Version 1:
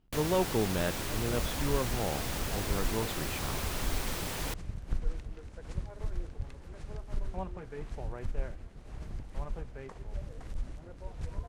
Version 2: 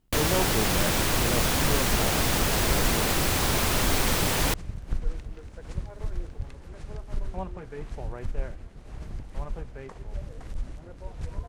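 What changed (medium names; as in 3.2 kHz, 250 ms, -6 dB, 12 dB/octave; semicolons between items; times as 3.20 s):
first sound +11.5 dB; second sound +3.5 dB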